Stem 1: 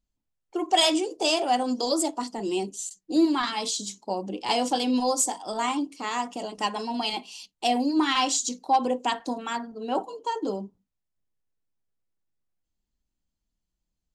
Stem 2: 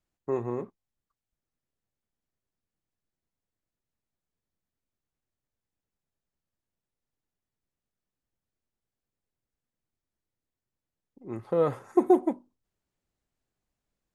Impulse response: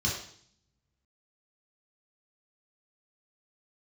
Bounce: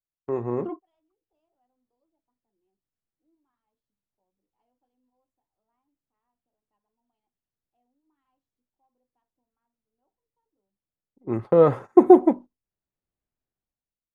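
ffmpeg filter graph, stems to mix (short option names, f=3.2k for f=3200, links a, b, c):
-filter_complex "[0:a]lowpass=1.4k,adelay=100,volume=-5dB[a];[1:a]lowpass=f=1.9k:p=1,agate=range=-18dB:threshold=-43dB:ratio=16:detection=peak,dynaudnorm=f=160:g=9:m=13.5dB,volume=0dB,asplit=2[b][c];[c]apad=whole_len=628420[d];[a][d]sidechaingate=range=-47dB:threshold=-44dB:ratio=16:detection=peak[e];[e][b]amix=inputs=2:normalize=0"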